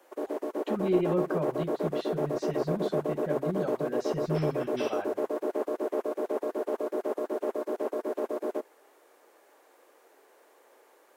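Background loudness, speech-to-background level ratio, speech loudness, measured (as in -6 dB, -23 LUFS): -32.0 LUFS, -2.5 dB, -34.5 LUFS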